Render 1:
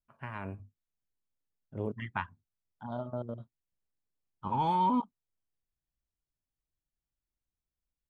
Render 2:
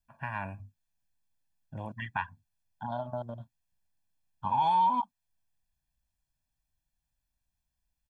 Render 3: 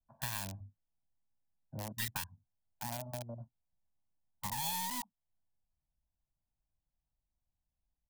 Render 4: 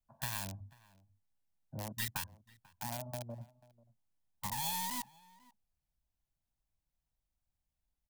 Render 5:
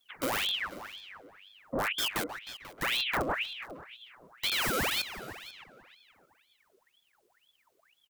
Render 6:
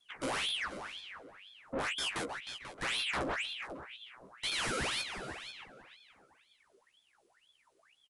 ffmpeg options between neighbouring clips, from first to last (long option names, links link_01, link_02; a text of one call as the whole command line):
ffmpeg -i in.wav -filter_complex "[0:a]aecho=1:1:1.2:0.88,acrossover=split=580[link_01][link_02];[link_01]acompressor=threshold=-42dB:ratio=6[link_03];[link_03][link_02]amix=inputs=2:normalize=0,alimiter=limit=-22dB:level=0:latency=1:release=106,volume=3dB" out.wav
ffmpeg -i in.wav -filter_complex "[0:a]acrossover=split=210|3000[link_01][link_02][link_03];[link_02]acompressor=threshold=-39dB:ratio=10[link_04];[link_01][link_04][link_03]amix=inputs=3:normalize=0,acrossover=split=230|440|920[link_05][link_06][link_07][link_08];[link_08]acrusher=bits=5:dc=4:mix=0:aa=0.000001[link_09];[link_05][link_06][link_07][link_09]amix=inputs=4:normalize=0,crystalizer=i=7:c=0,volume=-3dB" out.wav
ffmpeg -i in.wav -filter_complex "[0:a]asplit=2[link_01][link_02];[link_02]adelay=489.8,volume=-22dB,highshelf=frequency=4000:gain=-11[link_03];[link_01][link_03]amix=inputs=2:normalize=0" out.wav
ffmpeg -i in.wav -filter_complex "[0:a]aeval=exprs='0.0841*sin(PI/2*5.62*val(0)/0.0841)':channel_layout=same,asplit=2[link_01][link_02];[link_02]adelay=310,lowpass=frequency=2700:poles=1,volume=-13dB,asplit=2[link_03][link_04];[link_04]adelay=310,lowpass=frequency=2700:poles=1,volume=0.46,asplit=2[link_05][link_06];[link_06]adelay=310,lowpass=frequency=2700:poles=1,volume=0.46,asplit=2[link_07][link_08];[link_08]adelay=310,lowpass=frequency=2700:poles=1,volume=0.46,asplit=2[link_09][link_10];[link_10]adelay=310,lowpass=frequency=2700:poles=1,volume=0.46[link_11];[link_01][link_03][link_05][link_07][link_09][link_11]amix=inputs=6:normalize=0,aeval=exprs='val(0)*sin(2*PI*1900*n/s+1900*0.8/2*sin(2*PI*2*n/s))':channel_layout=same,volume=-1.5dB" out.wav
ffmpeg -i in.wav -filter_complex "[0:a]asoftclip=type=tanh:threshold=-31.5dB,asplit=2[link_01][link_02];[link_02]adelay=15,volume=-5.5dB[link_03];[link_01][link_03]amix=inputs=2:normalize=0" -ar 24000 -c:a libmp3lame -b:a 80k out.mp3